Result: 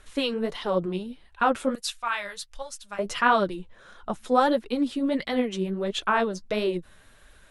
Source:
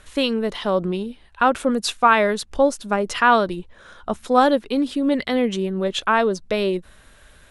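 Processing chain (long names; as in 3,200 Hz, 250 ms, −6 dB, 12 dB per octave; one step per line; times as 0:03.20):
flanger 1.5 Hz, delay 2.1 ms, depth 9.9 ms, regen +29%
0:01.75–0:02.99: guitar amp tone stack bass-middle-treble 10-0-10
level −1.5 dB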